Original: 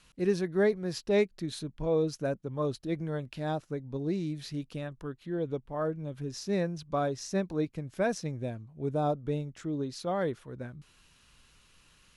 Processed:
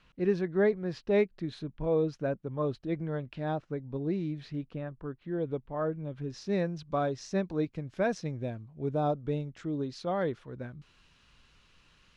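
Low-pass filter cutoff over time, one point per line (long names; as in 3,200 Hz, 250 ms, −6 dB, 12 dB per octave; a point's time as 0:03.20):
0:04.39 2,900 Hz
0:05.02 1,400 Hz
0:05.43 3,100 Hz
0:06.10 3,100 Hz
0:06.60 4,800 Hz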